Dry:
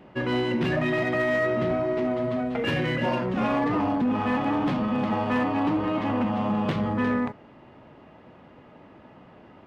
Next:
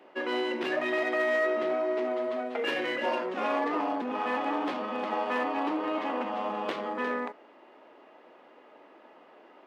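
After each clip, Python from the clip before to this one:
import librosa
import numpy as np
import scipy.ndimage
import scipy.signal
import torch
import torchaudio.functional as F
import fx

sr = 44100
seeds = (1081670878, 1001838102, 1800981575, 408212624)

y = scipy.signal.sosfilt(scipy.signal.butter(4, 330.0, 'highpass', fs=sr, output='sos'), x)
y = y * 10.0 ** (-2.0 / 20.0)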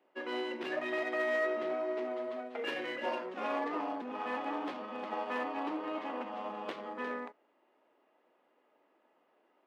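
y = fx.upward_expand(x, sr, threshold_db=-50.0, expansion=1.5)
y = y * 10.0 ** (-4.5 / 20.0)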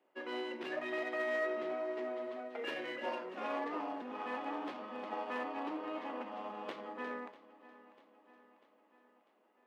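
y = fx.echo_feedback(x, sr, ms=645, feedback_pct=56, wet_db=-18.0)
y = y * 10.0 ** (-3.5 / 20.0)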